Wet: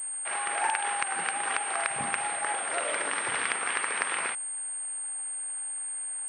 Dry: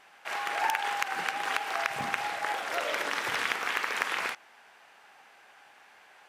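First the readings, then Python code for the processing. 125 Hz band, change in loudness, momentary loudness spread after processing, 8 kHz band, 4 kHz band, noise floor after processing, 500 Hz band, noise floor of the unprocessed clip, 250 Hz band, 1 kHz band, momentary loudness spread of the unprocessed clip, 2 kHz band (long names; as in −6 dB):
0.0 dB, +1.5 dB, 4 LU, +16.5 dB, −2.5 dB, −35 dBFS, 0.0 dB, −57 dBFS, 0.0 dB, 0.0 dB, 4 LU, −0.5 dB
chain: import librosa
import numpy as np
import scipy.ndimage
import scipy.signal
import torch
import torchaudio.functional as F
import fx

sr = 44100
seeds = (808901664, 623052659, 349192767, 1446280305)

y = fx.pwm(x, sr, carrier_hz=8600.0)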